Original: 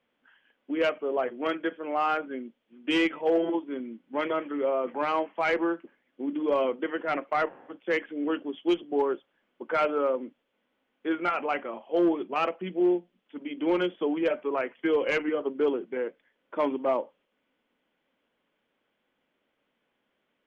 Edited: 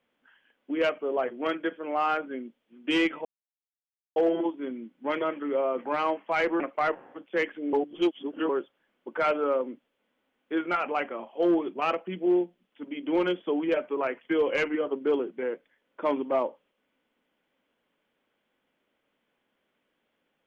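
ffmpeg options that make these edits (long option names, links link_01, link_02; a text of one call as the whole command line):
ffmpeg -i in.wav -filter_complex "[0:a]asplit=5[link_01][link_02][link_03][link_04][link_05];[link_01]atrim=end=3.25,asetpts=PTS-STARTPTS,afade=type=out:start_time=3.246:duration=0.004:curve=hsin,apad=pad_dur=0.91[link_06];[link_02]atrim=start=3.25:end=5.692,asetpts=PTS-STARTPTS,afade=type=in:duration=0.004:curve=hsin[link_07];[link_03]atrim=start=7.138:end=8.272[link_08];[link_04]atrim=start=8.268:end=9.032,asetpts=PTS-STARTPTS,areverse[link_09];[link_05]atrim=start=9.028[link_10];[link_06][link_07]concat=n=2:v=0:a=1[link_11];[link_11][link_08]acrossfade=duration=0.004:curve1=hsin:curve2=hsin[link_12];[link_12][link_09]acrossfade=duration=0.004:curve1=hsin:curve2=hsin[link_13];[link_13][link_10]acrossfade=duration=0.004:curve1=hsin:curve2=hsin" out.wav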